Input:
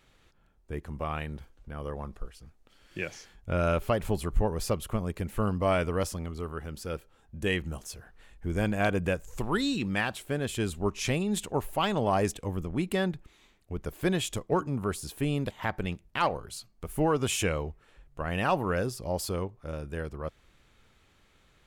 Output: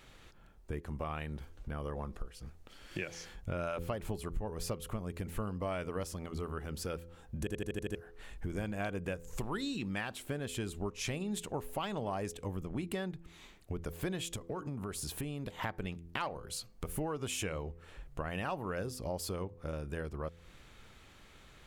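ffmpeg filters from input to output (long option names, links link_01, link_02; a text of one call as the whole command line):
ffmpeg -i in.wav -filter_complex "[0:a]asettb=1/sr,asplit=3[link_01][link_02][link_03];[link_01]atrim=end=14.364[link_04];[link_02]atrim=start=14.36:end=15.62,asetpts=PTS-STARTPTS,afade=type=in:duration=0.004:curve=qsin,afade=type=out:start_time=1.256:duration=0.004:curve=qsin,acompressor=threshold=-36dB:ratio=3:attack=3.2:release=140:knee=1:detection=peak[link_05];[link_03]atrim=start=15.616[link_06];[link_04][link_05]acrossfade=duration=0.004:curve1=hsin:curve2=qsin[link_07];[link_07][link_06]acrossfade=duration=0.004:curve1=qsin:curve2=hsin,asplit=8[link_08][link_09][link_10][link_11][link_12][link_13][link_14][link_15];[link_08]atrim=end=7.472[link_16];[link_09]atrim=start=7.388:end=7.472[link_17];[link_10]atrim=start=7.388:end=7.472[link_18];[link_11]atrim=start=7.388:end=7.472[link_19];[link_12]atrim=start=7.388:end=7.472[link_20];[link_13]atrim=start=7.388:end=7.472[link_21];[link_14]atrim=start=7.388:end=7.472[link_22];[link_15]atrim=start=7.948[link_23];[link_16][link_17]acrossfade=duration=0.004:curve1=hsin:curve2=hsin[link_24];[link_24][link_18]acrossfade=duration=0.004:curve1=hsin:curve2=hsin[link_25];[link_25][link_19]acrossfade=duration=0.004:curve1=hsin:curve2=hsin[link_26];[link_26][link_20]acrossfade=duration=0.004:curve1=hsin:curve2=hsin[link_27];[link_27][link_21]acrossfade=duration=0.004:curve1=hsin:curve2=hsin[link_28];[link_28][link_22]acrossfade=duration=0.004:curve1=hsin:curve2=hsin[link_29];[link_29][link_23]acrossfade=duration=0.004:curve1=hsin:curve2=hsin,bandreject=frequency=84.44:width_type=h:width=4,bandreject=frequency=168.88:width_type=h:width=4,bandreject=frequency=253.32:width_type=h:width=4,bandreject=frequency=337.76:width_type=h:width=4,bandreject=frequency=422.2:width_type=h:width=4,bandreject=frequency=506.64:width_type=h:width=4,acompressor=threshold=-43dB:ratio=4,volume=6dB" out.wav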